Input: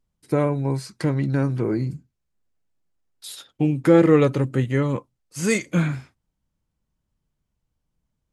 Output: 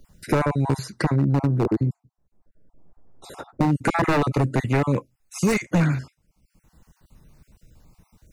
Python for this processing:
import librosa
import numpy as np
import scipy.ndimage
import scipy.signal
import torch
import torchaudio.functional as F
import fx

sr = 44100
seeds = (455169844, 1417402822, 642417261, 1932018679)

y = fx.spec_dropout(x, sr, seeds[0], share_pct=33)
y = fx.curve_eq(y, sr, hz=(580.0, 860.0, 3200.0), db=(0, -2, -26), at=(1.15, 3.7), fade=0.02)
y = 10.0 ** (-16.5 / 20.0) * (np.abs((y / 10.0 ** (-16.5 / 20.0) + 3.0) % 4.0 - 2.0) - 1.0)
y = fx.notch(y, sr, hz=3200.0, q=5.4)
y = fx.band_squash(y, sr, depth_pct=70)
y = y * librosa.db_to_amplitude(3.5)